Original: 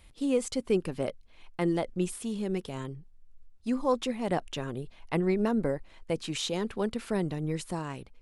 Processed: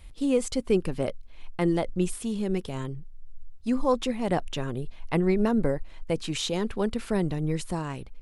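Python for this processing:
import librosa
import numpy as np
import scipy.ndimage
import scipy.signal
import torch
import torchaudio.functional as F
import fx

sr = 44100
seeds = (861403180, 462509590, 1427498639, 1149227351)

y = fx.low_shelf(x, sr, hz=73.0, db=11.0)
y = y * 10.0 ** (2.5 / 20.0)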